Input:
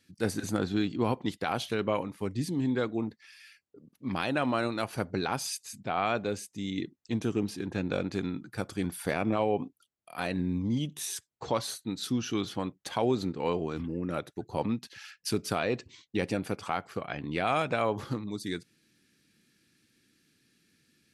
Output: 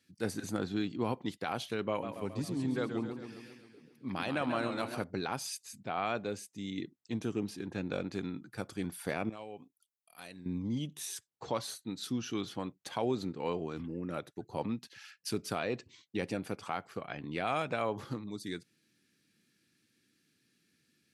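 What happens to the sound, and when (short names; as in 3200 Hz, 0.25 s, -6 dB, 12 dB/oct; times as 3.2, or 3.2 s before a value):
1.89–5.04 warbling echo 0.135 s, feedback 60%, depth 137 cents, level -8 dB
9.29–10.46 pre-emphasis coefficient 0.8
whole clip: HPF 86 Hz; gain -5 dB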